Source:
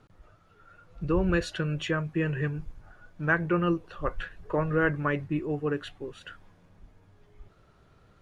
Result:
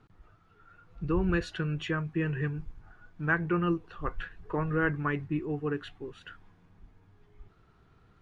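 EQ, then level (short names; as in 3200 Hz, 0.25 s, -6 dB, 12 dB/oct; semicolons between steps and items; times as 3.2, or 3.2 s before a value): bell 570 Hz -13 dB 0.26 oct; high shelf 6100 Hz -11.5 dB; -1.5 dB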